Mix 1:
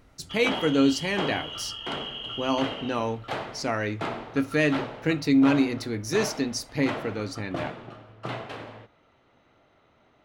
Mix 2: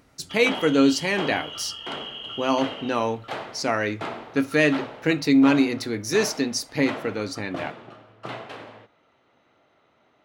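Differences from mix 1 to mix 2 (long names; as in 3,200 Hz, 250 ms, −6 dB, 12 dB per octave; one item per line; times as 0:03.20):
speech +4.5 dB
master: add high-pass filter 200 Hz 6 dB per octave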